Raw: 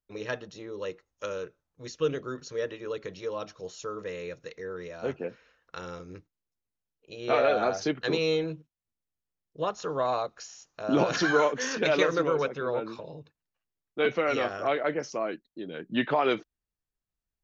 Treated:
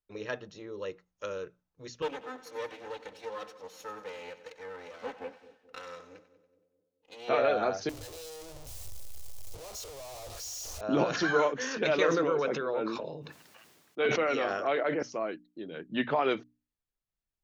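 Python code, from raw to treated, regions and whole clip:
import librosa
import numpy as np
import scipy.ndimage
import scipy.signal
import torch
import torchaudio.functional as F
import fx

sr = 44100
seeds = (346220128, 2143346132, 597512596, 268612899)

y = fx.chain(x, sr, fx.lower_of_two(delay_ms=3.9),
    fx.highpass(hz=460.0, slope=6),
    fx.echo_split(split_hz=550.0, low_ms=216, high_ms=94, feedback_pct=52, wet_db=-14), at=(2.02, 7.29))
y = fx.chain(y, sr, fx.clip_1bit(),
    fx.curve_eq(hz=(100.0, 170.0, 570.0, 1600.0, 6100.0), db=(0, -25, -7, -18, -2)), at=(7.89, 10.81))
y = fx.chain(y, sr, fx.highpass(hz=180.0, slope=12),
    fx.sustainer(db_per_s=31.0), at=(11.99, 15.03))
y = fx.high_shelf(y, sr, hz=6300.0, db=-5.0)
y = fx.hum_notches(y, sr, base_hz=60, count=5)
y = F.gain(torch.from_numpy(y), -2.5).numpy()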